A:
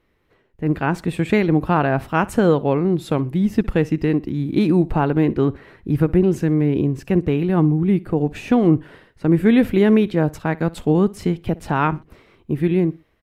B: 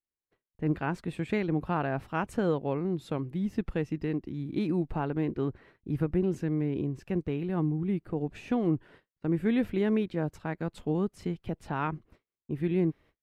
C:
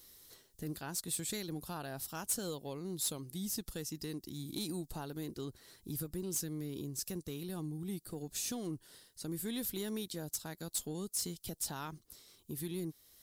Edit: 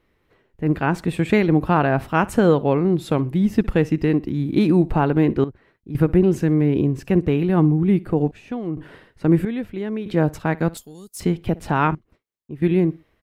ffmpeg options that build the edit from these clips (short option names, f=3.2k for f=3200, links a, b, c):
-filter_complex "[1:a]asplit=4[a][b][c][d];[0:a]asplit=6[e][f][g][h][i][j];[e]atrim=end=5.442[k];[a]atrim=start=5.438:end=5.952[l];[f]atrim=start=5.948:end=8.312[m];[b]atrim=start=8.308:end=8.772[n];[g]atrim=start=8.768:end=9.452[o];[c]atrim=start=9.448:end=10.062[p];[h]atrim=start=10.058:end=10.772[q];[2:a]atrim=start=10.768:end=11.202[r];[i]atrim=start=11.198:end=11.952[s];[d]atrim=start=11.948:end=12.622[t];[j]atrim=start=12.618[u];[k][l]acrossfade=d=0.004:c1=hsin:c2=hsin[v];[v][m]acrossfade=d=0.004:c1=hsin:c2=hsin[w];[w][n]acrossfade=d=0.004:c1=hsin:c2=hsin[x];[x][o]acrossfade=d=0.004:c1=hsin:c2=hsin[y];[y][p]acrossfade=d=0.004:c1=hsin:c2=hsin[z];[z][q]acrossfade=d=0.004:c1=hsin:c2=hsin[aa];[aa][r]acrossfade=d=0.004:c1=hsin:c2=hsin[ab];[ab][s]acrossfade=d=0.004:c1=hsin:c2=hsin[ac];[ac][t]acrossfade=d=0.004:c1=hsin:c2=hsin[ad];[ad][u]acrossfade=d=0.004:c1=hsin:c2=hsin"